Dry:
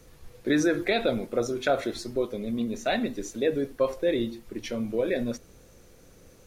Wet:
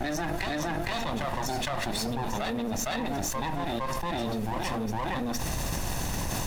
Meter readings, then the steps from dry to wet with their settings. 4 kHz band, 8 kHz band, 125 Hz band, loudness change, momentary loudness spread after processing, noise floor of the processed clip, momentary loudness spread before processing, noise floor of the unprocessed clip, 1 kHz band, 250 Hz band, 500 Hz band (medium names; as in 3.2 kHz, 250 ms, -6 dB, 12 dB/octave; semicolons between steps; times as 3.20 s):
+2.0 dB, +7.0 dB, +6.0 dB, -3.0 dB, 1 LU, -32 dBFS, 9 LU, -54 dBFS, +5.5 dB, -3.5 dB, -7.5 dB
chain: comb filter that takes the minimum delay 1.1 ms; on a send: reverse echo 461 ms -6.5 dB; on the sum: level flattener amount 100%; trim -7.5 dB